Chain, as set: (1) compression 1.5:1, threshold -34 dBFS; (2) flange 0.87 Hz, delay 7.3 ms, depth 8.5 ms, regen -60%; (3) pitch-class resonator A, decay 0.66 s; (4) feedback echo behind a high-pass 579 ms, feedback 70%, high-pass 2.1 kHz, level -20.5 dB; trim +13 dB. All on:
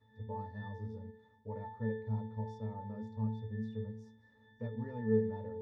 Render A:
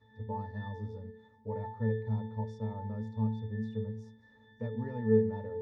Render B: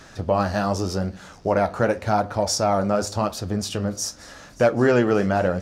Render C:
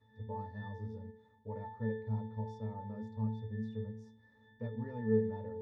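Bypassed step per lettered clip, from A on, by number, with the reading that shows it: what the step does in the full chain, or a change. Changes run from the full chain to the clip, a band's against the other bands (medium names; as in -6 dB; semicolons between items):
2, loudness change +4.5 LU; 3, 125 Hz band -9.5 dB; 4, echo-to-direct -23.0 dB to none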